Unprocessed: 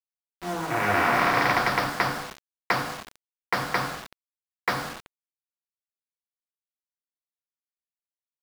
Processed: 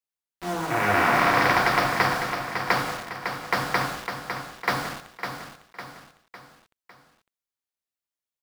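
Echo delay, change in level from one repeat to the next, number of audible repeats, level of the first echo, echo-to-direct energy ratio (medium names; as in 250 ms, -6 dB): 554 ms, -6.5 dB, 4, -7.5 dB, -6.5 dB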